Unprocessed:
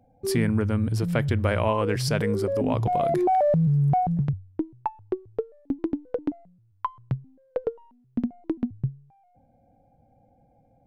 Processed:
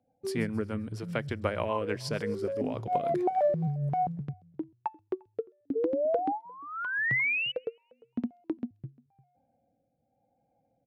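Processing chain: HPF 260 Hz 6 dB/oct; high shelf 9400 Hz -10.5 dB; outdoor echo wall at 60 m, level -20 dB; painted sound rise, 5.75–7.52, 440–3000 Hz -25 dBFS; rotary speaker horn 6.7 Hz, later 0.9 Hz, at 3.17; on a send: thin delay 0.132 s, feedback 48%, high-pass 5300 Hz, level -15.5 dB; on the sum: upward expander 1.5:1, over -38 dBFS

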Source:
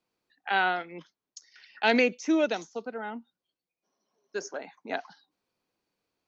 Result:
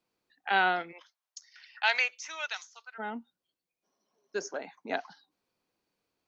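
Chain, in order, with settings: 0.91–2.98 HPF 600 Hz -> 1300 Hz 24 dB/oct

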